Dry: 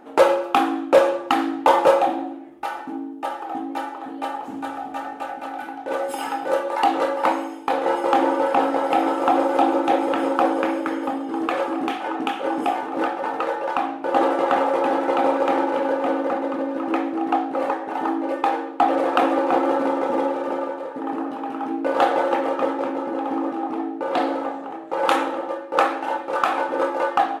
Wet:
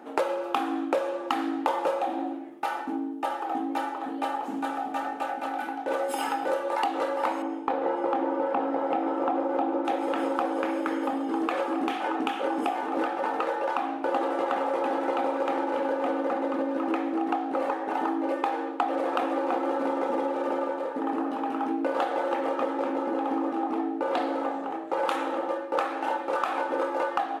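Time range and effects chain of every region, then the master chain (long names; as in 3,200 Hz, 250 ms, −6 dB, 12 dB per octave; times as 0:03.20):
0:07.42–0:09.85: low-pass filter 2,300 Hz 6 dB per octave + spectral tilt −1.5 dB per octave
whole clip: high-pass filter 180 Hz 24 dB per octave; downward compressor, threshold −24 dBFS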